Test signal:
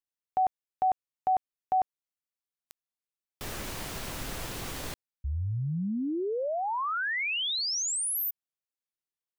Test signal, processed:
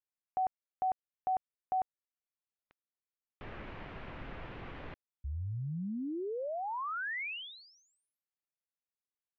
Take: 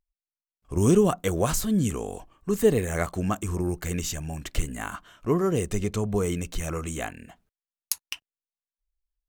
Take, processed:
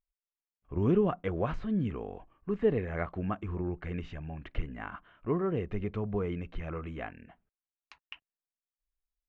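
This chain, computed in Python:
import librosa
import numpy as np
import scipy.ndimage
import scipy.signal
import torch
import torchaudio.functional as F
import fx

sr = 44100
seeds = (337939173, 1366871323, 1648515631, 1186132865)

y = scipy.signal.sosfilt(scipy.signal.butter(4, 2600.0, 'lowpass', fs=sr, output='sos'), x)
y = y * librosa.db_to_amplitude(-6.5)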